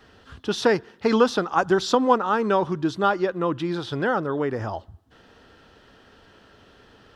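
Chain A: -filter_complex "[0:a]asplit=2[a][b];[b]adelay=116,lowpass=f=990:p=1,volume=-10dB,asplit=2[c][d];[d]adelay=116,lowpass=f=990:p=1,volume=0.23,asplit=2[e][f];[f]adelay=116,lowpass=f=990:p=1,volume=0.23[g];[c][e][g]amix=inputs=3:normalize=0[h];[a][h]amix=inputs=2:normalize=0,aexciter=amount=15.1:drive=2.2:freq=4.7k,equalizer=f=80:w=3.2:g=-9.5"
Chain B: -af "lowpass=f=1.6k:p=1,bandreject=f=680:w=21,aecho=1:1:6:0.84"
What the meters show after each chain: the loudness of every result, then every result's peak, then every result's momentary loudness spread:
-20.0, -21.5 LUFS; -2.0, -2.0 dBFS; 11, 10 LU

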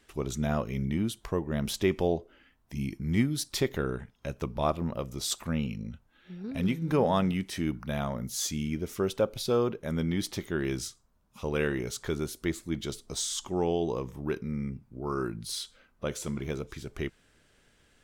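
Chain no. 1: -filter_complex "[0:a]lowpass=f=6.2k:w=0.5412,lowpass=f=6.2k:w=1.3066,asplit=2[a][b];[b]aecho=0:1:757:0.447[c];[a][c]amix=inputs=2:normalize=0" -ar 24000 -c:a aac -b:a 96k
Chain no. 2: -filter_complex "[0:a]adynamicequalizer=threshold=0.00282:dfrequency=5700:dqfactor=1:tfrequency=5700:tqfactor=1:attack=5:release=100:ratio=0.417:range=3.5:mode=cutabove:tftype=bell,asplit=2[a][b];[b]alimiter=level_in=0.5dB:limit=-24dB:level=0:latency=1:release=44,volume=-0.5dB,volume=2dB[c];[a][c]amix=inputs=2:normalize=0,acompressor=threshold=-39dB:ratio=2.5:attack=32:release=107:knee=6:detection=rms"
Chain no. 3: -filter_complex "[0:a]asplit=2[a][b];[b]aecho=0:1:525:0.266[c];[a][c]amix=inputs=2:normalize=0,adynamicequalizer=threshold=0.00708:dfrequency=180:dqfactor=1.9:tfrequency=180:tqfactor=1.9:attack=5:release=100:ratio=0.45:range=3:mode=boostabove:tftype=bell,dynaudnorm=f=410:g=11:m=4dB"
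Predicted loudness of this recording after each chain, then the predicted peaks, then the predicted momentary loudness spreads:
-31.5, -36.5, -26.0 LUFS; -13.0, -18.0, -7.5 dBFS; 9, 6, 12 LU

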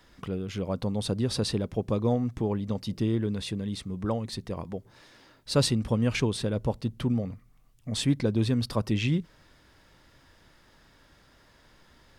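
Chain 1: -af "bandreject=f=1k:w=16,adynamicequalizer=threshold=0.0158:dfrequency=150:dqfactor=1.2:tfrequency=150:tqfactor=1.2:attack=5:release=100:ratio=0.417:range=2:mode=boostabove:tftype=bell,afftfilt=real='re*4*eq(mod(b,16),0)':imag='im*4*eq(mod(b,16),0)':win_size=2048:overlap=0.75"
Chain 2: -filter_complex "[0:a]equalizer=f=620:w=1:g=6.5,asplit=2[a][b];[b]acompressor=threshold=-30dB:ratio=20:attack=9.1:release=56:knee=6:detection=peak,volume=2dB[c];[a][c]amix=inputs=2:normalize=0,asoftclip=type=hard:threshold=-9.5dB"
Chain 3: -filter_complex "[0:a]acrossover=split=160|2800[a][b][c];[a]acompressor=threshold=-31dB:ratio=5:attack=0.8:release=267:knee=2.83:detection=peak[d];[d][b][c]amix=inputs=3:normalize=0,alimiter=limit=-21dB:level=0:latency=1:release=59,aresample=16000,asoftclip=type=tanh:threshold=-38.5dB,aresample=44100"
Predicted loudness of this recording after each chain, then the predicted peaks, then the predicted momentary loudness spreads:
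-33.5, -23.5, -42.0 LUFS; -15.5, -9.5, -33.5 dBFS; 16, 7, 19 LU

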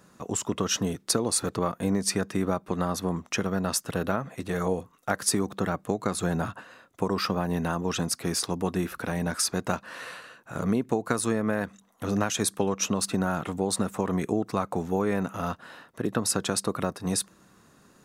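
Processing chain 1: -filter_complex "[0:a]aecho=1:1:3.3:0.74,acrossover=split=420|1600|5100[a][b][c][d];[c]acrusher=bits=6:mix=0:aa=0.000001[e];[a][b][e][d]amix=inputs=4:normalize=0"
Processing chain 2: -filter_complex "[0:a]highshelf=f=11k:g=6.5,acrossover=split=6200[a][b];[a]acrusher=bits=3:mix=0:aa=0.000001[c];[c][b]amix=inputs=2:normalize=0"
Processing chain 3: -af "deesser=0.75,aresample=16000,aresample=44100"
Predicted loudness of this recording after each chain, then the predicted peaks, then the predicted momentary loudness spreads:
-27.5, -27.5, -30.0 LUFS; -8.5, -7.0, -8.5 dBFS; 7, 6, 6 LU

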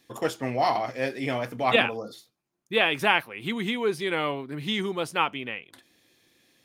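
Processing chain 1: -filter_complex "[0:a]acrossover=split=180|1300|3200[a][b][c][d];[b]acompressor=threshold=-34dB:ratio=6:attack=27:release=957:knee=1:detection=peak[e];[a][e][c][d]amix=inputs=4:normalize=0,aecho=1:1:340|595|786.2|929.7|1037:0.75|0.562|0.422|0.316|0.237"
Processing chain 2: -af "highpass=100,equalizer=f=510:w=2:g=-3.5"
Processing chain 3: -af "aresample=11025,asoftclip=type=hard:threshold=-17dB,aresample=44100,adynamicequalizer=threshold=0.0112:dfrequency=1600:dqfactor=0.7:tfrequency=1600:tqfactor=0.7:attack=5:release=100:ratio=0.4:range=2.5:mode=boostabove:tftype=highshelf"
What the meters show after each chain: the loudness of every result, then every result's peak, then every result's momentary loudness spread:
-27.0, -27.0, -25.5 LUFS; -6.0, -6.5, -9.0 dBFS; 9, 11, 10 LU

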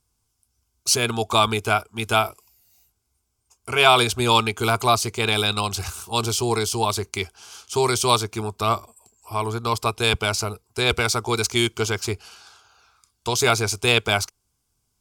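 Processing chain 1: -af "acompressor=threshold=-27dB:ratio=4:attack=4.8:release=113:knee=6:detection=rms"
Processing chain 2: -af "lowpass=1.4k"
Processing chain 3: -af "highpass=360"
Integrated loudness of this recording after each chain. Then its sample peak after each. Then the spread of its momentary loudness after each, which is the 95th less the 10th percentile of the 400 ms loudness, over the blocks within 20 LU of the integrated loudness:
-31.0, -25.0, -22.0 LUFS; -11.0, -5.5, -1.0 dBFS; 9, 10, 11 LU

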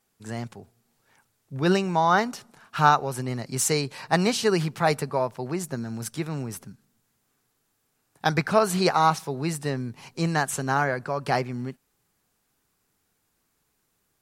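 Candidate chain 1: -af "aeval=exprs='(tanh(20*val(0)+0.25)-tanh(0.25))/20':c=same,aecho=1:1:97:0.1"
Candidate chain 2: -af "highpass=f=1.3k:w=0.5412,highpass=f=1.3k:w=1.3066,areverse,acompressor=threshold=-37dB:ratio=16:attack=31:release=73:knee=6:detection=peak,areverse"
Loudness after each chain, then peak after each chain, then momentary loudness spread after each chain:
-32.0, -38.0 LUFS; -23.5, -18.5 dBFS; 10, 10 LU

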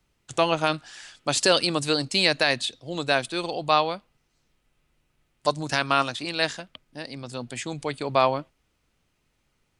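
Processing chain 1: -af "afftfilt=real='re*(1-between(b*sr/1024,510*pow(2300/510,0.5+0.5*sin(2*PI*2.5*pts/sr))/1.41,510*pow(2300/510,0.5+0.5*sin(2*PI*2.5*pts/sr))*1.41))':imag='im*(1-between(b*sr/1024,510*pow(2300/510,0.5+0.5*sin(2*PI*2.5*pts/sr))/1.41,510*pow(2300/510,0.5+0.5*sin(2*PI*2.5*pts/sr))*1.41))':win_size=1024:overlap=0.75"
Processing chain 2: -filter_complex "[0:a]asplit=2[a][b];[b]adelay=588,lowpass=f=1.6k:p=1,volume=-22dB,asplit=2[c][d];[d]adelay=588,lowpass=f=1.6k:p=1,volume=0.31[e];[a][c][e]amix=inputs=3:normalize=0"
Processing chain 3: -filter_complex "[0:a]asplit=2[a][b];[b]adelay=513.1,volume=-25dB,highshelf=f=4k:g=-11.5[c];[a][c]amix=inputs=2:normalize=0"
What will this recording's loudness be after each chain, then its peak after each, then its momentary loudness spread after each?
-26.0, -24.5, -24.5 LUFS; -7.0, -6.0, -6.0 dBFS; 15, 15, 15 LU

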